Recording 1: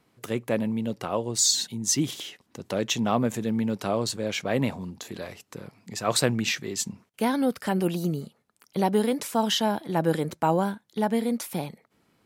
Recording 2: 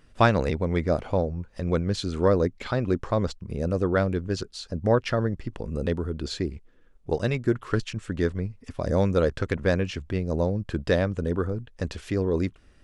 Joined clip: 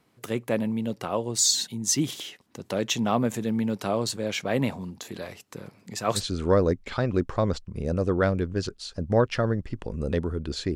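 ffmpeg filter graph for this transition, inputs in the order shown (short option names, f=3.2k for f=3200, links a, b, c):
-filter_complex "[0:a]asplit=3[a][b][c];[a]afade=t=out:st=5.54:d=0.02[d];[b]aecho=1:1:135|270|405|540:0.0708|0.0411|0.0238|0.0138,afade=t=in:st=5.54:d=0.02,afade=t=out:st=6.23:d=0.02[e];[c]afade=t=in:st=6.23:d=0.02[f];[d][e][f]amix=inputs=3:normalize=0,apad=whole_dur=10.75,atrim=end=10.75,atrim=end=6.23,asetpts=PTS-STARTPTS[g];[1:a]atrim=start=1.87:end=6.49,asetpts=PTS-STARTPTS[h];[g][h]acrossfade=d=0.1:c1=tri:c2=tri"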